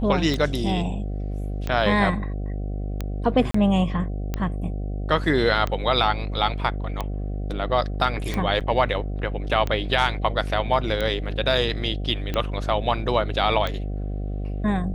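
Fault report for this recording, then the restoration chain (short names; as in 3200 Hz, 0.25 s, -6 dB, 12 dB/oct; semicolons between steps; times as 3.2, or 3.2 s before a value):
buzz 50 Hz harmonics 15 -28 dBFS
tick 45 rpm -13 dBFS
3.51–3.54 gap 34 ms
8.6–8.61 gap 7.1 ms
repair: de-click; de-hum 50 Hz, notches 15; interpolate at 3.51, 34 ms; interpolate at 8.6, 7.1 ms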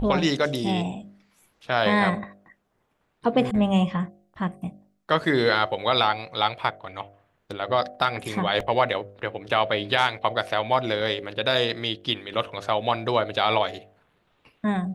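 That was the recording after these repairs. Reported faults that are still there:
none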